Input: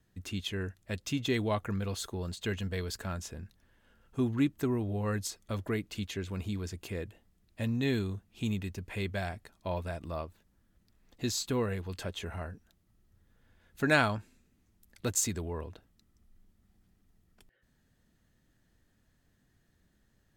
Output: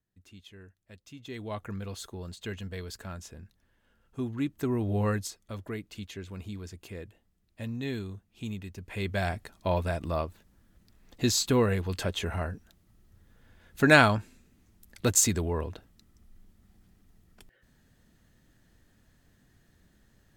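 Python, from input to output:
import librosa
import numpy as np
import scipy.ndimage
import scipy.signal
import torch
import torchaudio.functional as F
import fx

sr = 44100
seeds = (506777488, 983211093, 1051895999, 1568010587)

y = fx.gain(x, sr, db=fx.line((1.15, -15.0), (1.61, -3.5), (4.39, -3.5), (5.02, 6.5), (5.38, -4.0), (8.7, -4.0), (9.3, 7.0)))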